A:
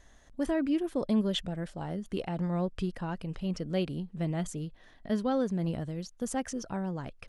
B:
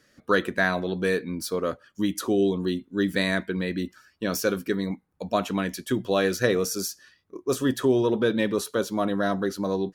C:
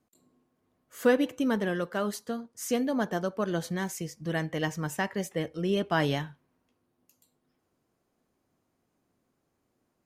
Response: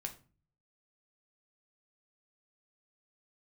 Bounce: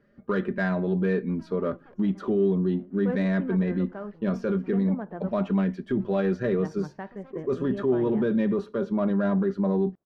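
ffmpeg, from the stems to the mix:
-filter_complex "[0:a]equalizer=f=120:w=0.63:g=-6,aeval=exprs='0.0266*(abs(mod(val(0)/0.0266+3,4)-2)-1)':c=same,adelay=900,volume=0.282,asplit=3[s0][s1][s2];[s1]volume=0.2[s3];[s2]volume=0.126[s4];[1:a]lowshelf=f=460:g=5.5,aecho=1:1:5:0.56,volume=0.708,asplit=3[s5][s6][s7];[s6]volume=0.251[s8];[2:a]lowpass=2200,adelay=2000,volume=0.501,asplit=3[s9][s10][s11];[s9]atrim=end=5.4,asetpts=PTS-STARTPTS,afade=t=out:st=5.396:d=0.004:c=hsin[s12];[s10]atrim=start=5.4:end=6.59,asetpts=PTS-STARTPTS,volume=0[s13];[s11]atrim=start=6.59,asetpts=PTS-STARTPTS,afade=t=in:d=0.004:c=hsin[s14];[s12][s13][s14]concat=n=3:v=0:a=1[s15];[s7]apad=whole_len=360771[s16];[s0][s16]sidechaincompress=threshold=0.0398:ratio=8:attack=16:release=1110[s17];[s5][s15]amix=inputs=2:normalize=0,highshelf=f=5400:g=-9,alimiter=limit=0.106:level=0:latency=1:release=11,volume=1[s18];[3:a]atrim=start_sample=2205[s19];[s3][s8]amix=inputs=2:normalize=0[s20];[s20][s19]afir=irnorm=-1:irlink=0[s21];[s4]aecho=0:1:235:1[s22];[s17][s18][s21][s22]amix=inputs=4:normalize=0,adynamicsmooth=sensitivity=0.5:basefreq=1800"

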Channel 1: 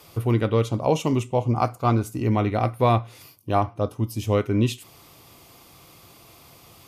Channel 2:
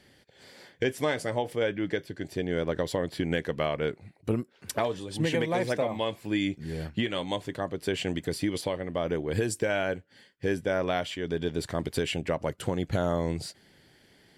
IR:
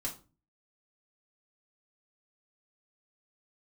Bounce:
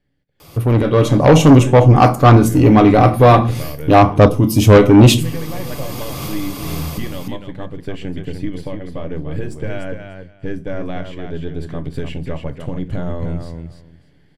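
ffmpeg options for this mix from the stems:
-filter_complex "[0:a]dynaudnorm=f=100:g=9:m=2.51,lowshelf=f=320:g=6.5,adelay=400,volume=1.26,asplit=2[s0][s1];[s1]volume=0.237[s2];[1:a]aeval=exprs='if(lt(val(0),0),0.708*val(0),val(0))':c=same,bass=f=250:g=12,treble=f=4000:g=-9,volume=0.126,asplit=4[s3][s4][s5][s6];[s4]volume=0.531[s7];[s5]volume=0.596[s8];[s6]apad=whole_len=320941[s9];[s0][s9]sidechaincompress=threshold=0.00447:ratio=8:attack=8.6:release=558[s10];[2:a]atrim=start_sample=2205[s11];[s2][s7]amix=inputs=2:normalize=0[s12];[s12][s11]afir=irnorm=-1:irlink=0[s13];[s8]aecho=0:1:296|592|888:1|0.17|0.0289[s14];[s10][s3][s13][s14]amix=inputs=4:normalize=0,asoftclip=type=tanh:threshold=0.2,dynaudnorm=f=370:g=5:m=5.31"

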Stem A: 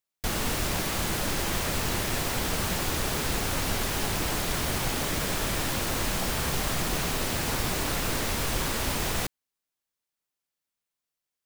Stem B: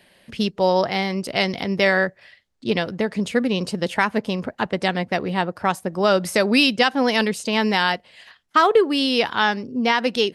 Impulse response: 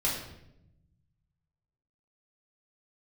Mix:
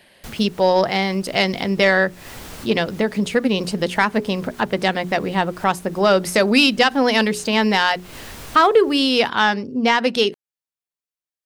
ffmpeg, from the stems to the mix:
-filter_complex "[0:a]volume=0.422[s0];[1:a]bandreject=f=60:t=h:w=6,bandreject=f=120:t=h:w=6,bandreject=f=180:t=h:w=6,bandreject=f=240:t=h:w=6,bandreject=f=300:t=h:w=6,bandreject=f=360:t=h:w=6,bandreject=f=420:t=h:w=6,acontrast=32,volume=0.794,asplit=2[s1][s2];[s2]apad=whole_len=505025[s3];[s0][s3]sidechaincompress=threshold=0.0158:ratio=3:attack=6.2:release=161[s4];[s4][s1]amix=inputs=2:normalize=0"

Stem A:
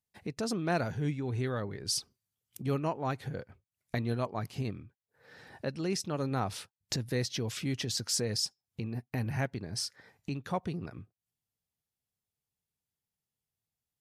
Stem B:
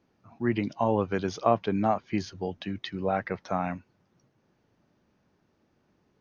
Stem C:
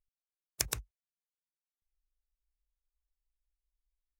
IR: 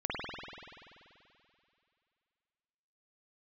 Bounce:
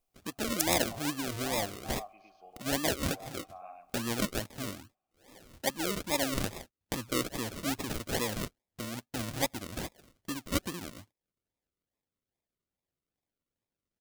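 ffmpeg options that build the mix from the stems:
-filter_complex "[0:a]aecho=1:1:3.5:0.59,adynamicequalizer=threshold=0.00501:dfrequency=680:dqfactor=0.88:tfrequency=680:tqfactor=0.88:attack=5:release=100:ratio=0.375:range=3:mode=boostabove:tftype=bell,acrusher=samples=42:mix=1:aa=0.000001:lfo=1:lforange=25.2:lforate=2.4,volume=0.631,asplit=2[s0][s1];[1:a]asplit=3[s2][s3][s4];[s2]bandpass=f=730:t=q:w=8,volume=1[s5];[s3]bandpass=f=1090:t=q:w=8,volume=0.501[s6];[s4]bandpass=f=2440:t=q:w=8,volume=0.355[s7];[s5][s6][s7]amix=inputs=3:normalize=0,volume=0.376,asplit=3[s8][s9][s10];[s9]volume=0.0631[s11];[s10]volume=0.473[s12];[2:a]acompressor=threshold=0.0141:ratio=6,volume=1.06[s13];[s1]apad=whole_len=273816[s14];[s8][s14]sidechaincompress=threshold=0.00891:ratio=8:attack=16:release=976[s15];[3:a]atrim=start_sample=2205[s16];[s11][s16]afir=irnorm=-1:irlink=0[s17];[s12]aecho=0:1:109:1[s18];[s0][s15][s13][s17][s18]amix=inputs=5:normalize=0,highshelf=f=2500:g=10"

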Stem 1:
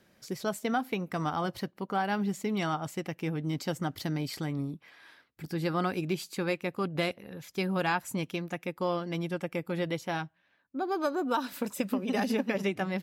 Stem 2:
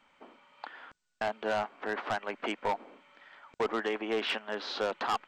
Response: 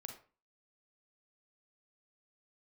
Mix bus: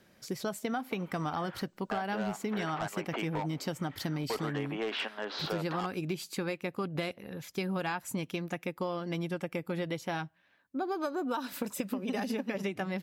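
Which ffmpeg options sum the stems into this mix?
-filter_complex "[0:a]volume=1.19[s0];[1:a]acontrast=79,alimiter=limit=0.0794:level=0:latency=1:release=369,adelay=700,volume=0.668[s1];[s0][s1]amix=inputs=2:normalize=0,acompressor=threshold=0.0316:ratio=6"

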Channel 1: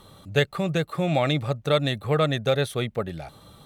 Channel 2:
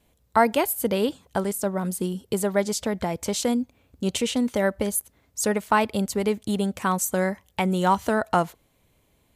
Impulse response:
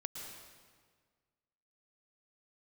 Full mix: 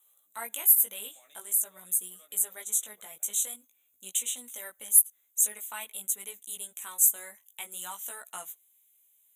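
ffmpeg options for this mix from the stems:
-filter_complex "[0:a]highpass=350,equalizer=f=3500:t=o:w=2:g=-9,acompressor=threshold=0.0126:ratio=2,volume=0.447,asplit=2[s0][s1];[s1]volume=0.224[s2];[1:a]crystalizer=i=2:c=0,volume=0.794,asplit=2[s3][s4];[s4]apad=whole_len=161005[s5];[s0][s5]sidechaincompress=threshold=0.0178:ratio=8:attack=16:release=115[s6];[2:a]atrim=start_sample=2205[s7];[s2][s7]afir=irnorm=-1:irlink=0[s8];[s6][s3][s8]amix=inputs=3:normalize=0,aderivative,flanger=delay=16:depth=3.3:speed=0.48,asuperstop=centerf=4900:order=8:qfactor=2.2"

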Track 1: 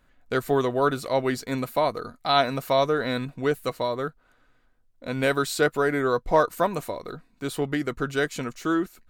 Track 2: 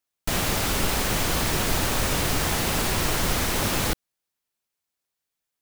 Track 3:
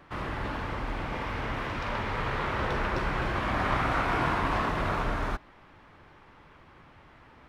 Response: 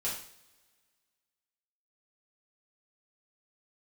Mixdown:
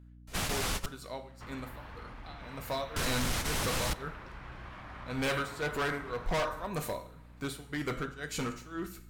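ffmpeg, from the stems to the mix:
-filter_complex "[0:a]tremolo=f=1.9:d=0.95,volume=0.891,afade=t=in:st=2.57:d=0.33:silence=0.266073,asplit=3[s0][s1][s2];[s1]volume=0.376[s3];[1:a]lowpass=12000,volume=0.501,asplit=3[s4][s5][s6];[s4]atrim=end=0.86,asetpts=PTS-STARTPTS,afade=t=out:st=0.856:d=0.004:c=hsin[s7];[s5]atrim=start=0.86:end=2.96,asetpts=PTS-STARTPTS,volume=0[s8];[s6]atrim=start=2.96,asetpts=PTS-STARTPTS,afade=t=in:d=0.004:c=hsin[s9];[s7][s8][s9]concat=n=3:v=0:a=1,asplit=2[s10][s11];[s11]volume=0.0668[s12];[2:a]acompressor=threshold=0.0224:ratio=6,adelay=1300,volume=0.335[s13];[s2]apad=whole_len=247771[s14];[s10][s14]sidechaingate=range=0.0224:threshold=0.00316:ratio=16:detection=peak[s15];[3:a]atrim=start_sample=2205[s16];[s3][s12]amix=inputs=2:normalize=0[s17];[s17][s16]afir=irnorm=-1:irlink=0[s18];[s0][s15][s13][s18]amix=inputs=4:normalize=0,volume=18.8,asoftclip=hard,volume=0.0531,equalizer=f=370:w=0.7:g=-5,aeval=exprs='val(0)+0.00251*(sin(2*PI*60*n/s)+sin(2*PI*2*60*n/s)/2+sin(2*PI*3*60*n/s)/3+sin(2*PI*4*60*n/s)/4+sin(2*PI*5*60*n/s)/5)':c=same"

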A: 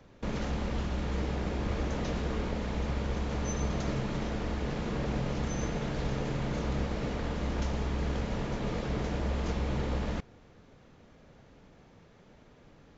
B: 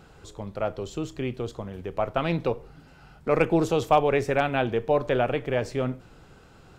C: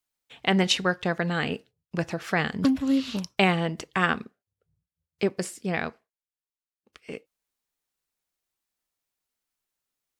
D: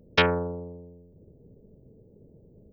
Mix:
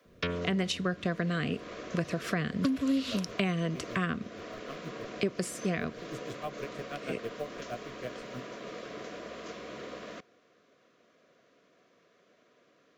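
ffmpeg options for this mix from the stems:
-filter_complex "[0:a]highpass=370,volume=0.668[s0];[1:a]acrusher=bits=7:mode=log:mix=0:aa=0.000001,aeval=exprs='val(0)*pow(10,-24*(0.5-0.5*cos(2*PI*6.3*n/s))/20)':c=same,adelay=2500,volume=0.266[s1];[2:a]volume=1.33[s2];[3:a]adelay=50,volume=0.531[s3];[s0][s1][s2][s3]amix=inputs=4:normalize=0,acrossover=split=81|330[s4][s5][s6];[s4]acompressor=threshold=0.00178:ratio=4[s7];[s5]acompressor=threshold=0.0282:ratio=4[s8];[s6]acompressor=threshold=0.0224:ratio=4[s9];[s7][s8][s9]amix=inputs=3:normalize=0,asuperstop=centerf=850:order=8:qfactor=4.3"

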